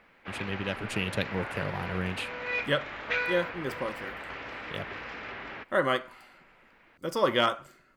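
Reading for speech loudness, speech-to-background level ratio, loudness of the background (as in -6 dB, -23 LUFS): -31.5 LUFS, 4.5 dB, -36.0 LUFS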